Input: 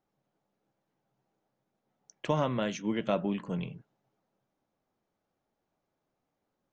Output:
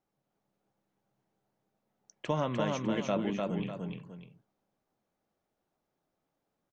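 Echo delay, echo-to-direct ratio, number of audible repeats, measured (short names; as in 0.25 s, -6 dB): 0.3 s, -2.5 dB, 2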